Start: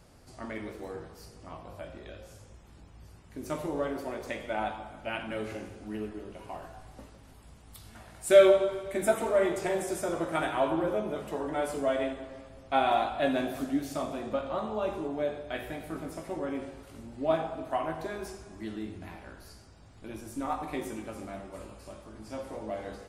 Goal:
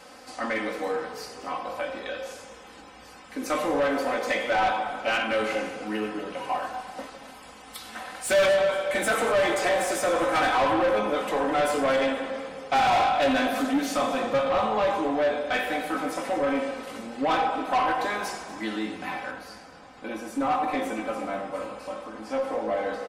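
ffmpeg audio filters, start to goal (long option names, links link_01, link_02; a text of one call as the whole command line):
ffmpeg -i in.wav -filter_complex "[0:a]lowshelf=frequency=190:gain=-7.5,aecho=1:1:3.9:0.86,asetnsamples=nb_out_samples=441:pad=0,asendcmd='19.31 lowpass f 1400',asplit=2[link_01][link_02];[link_02]highpass=frequency=720:poles=1,volume=29dB,asoftclip=type=tanh:threshold=-6.5dB[link_03];[link_01][link_03]amix=inputs=2:normalize=0,lowpass=frequency=3400:poles=1,volume=-6dB,asplit=6[link_04][link_05][link_06][link_07][link_08][link_09];[link_05]adelay=239,afreqshift=-38,volume=-18dB[link_10];[link_06]adelay=478,afreqshift=-76,volume=-23.4dB[link_11];[link_07]adelay=717,afreqshift=-114,volume=-28.7dB[link_12];[link_08]adelay=956,afreqshift=-152,volume=-34.1dB[link_13];[link_09]adelay=1195,afreqshift=-190,volume=-39.4dB[link_14];[link_04][link_10][link_11][link_12][link_13][link_14]amix=inputs=6:normalize=0,volume=-7.5dB" out.wav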